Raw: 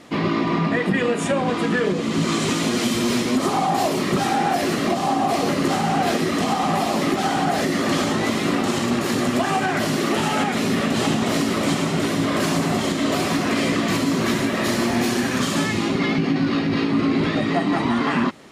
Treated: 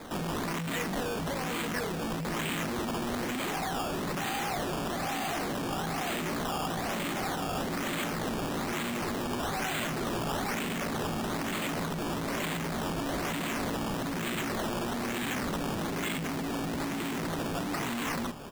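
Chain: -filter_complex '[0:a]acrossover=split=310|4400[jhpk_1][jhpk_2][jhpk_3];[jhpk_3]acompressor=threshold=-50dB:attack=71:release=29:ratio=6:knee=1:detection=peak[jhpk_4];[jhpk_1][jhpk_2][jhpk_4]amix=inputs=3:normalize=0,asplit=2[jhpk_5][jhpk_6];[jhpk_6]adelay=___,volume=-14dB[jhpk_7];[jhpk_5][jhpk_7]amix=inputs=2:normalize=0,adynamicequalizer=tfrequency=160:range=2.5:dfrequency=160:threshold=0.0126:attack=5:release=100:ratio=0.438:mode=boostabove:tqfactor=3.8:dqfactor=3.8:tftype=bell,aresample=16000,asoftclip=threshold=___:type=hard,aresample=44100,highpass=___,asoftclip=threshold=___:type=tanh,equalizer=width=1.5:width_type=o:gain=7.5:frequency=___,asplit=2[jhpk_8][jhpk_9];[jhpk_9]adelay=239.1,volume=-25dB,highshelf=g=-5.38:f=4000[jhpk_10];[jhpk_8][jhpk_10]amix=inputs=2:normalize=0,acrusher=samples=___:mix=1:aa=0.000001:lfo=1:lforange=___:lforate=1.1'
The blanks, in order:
17, -22.5dB, 91, -33dB, 3200, 15, 15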